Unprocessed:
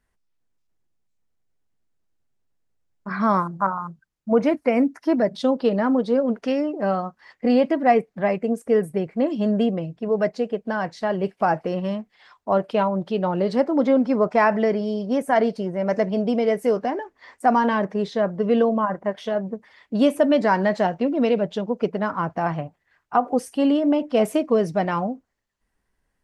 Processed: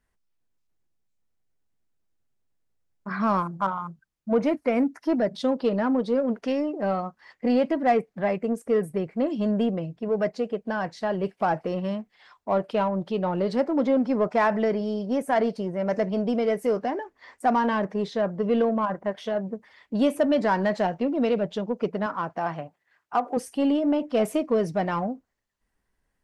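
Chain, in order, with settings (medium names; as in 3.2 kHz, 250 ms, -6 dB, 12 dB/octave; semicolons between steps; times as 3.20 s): in parallel at -5 dB: saturation -20 dBFS, distortion -10 dB; 22.06–23.37 s: on the sum: high-pass 300 Hz 6 dB/octave; trim -6 dB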